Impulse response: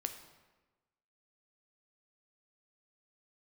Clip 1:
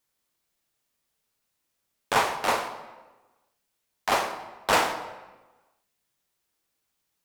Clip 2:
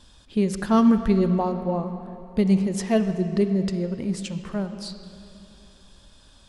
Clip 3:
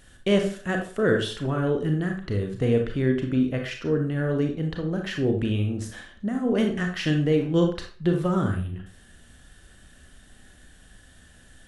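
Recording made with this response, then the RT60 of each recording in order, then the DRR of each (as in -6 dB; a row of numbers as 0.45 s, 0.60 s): 1; 1.2 s, 2.8 s, 0.45 s; 6.5 dB, 8.5 dB, 3.0 dB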